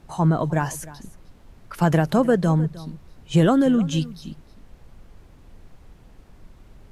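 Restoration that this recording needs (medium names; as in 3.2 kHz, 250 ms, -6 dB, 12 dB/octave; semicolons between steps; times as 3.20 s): noise print and reduce 17 dB; inverse comb 308 ms -18.5 dB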